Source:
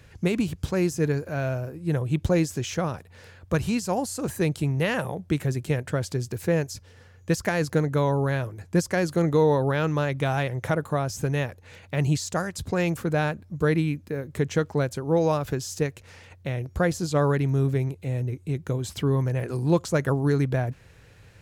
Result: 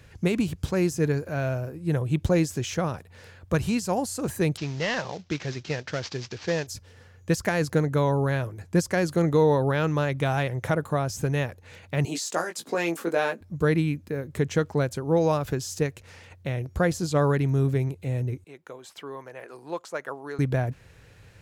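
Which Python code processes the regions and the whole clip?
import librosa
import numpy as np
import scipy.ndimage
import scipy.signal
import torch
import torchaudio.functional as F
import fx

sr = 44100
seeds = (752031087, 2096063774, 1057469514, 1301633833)

y = fx.chain(x, sr, fx.cvsd(bps=32000),
    fx.tilt_eq(slope=2.5), at=(4.57, 6.67))
y = fx.chain(y, sr, fx.highpass(hz=260.0, slope=24),
    fx.doubler(ms=18.0, db=-5.0), at=(12.05, 13.41))
y = fx.chain(y, sr, fx.bessel_highpass(hz=880.0, order=2),
    fx.high_shelf(hz=2600.0, db=-12.0), at=(18.44, 20.39))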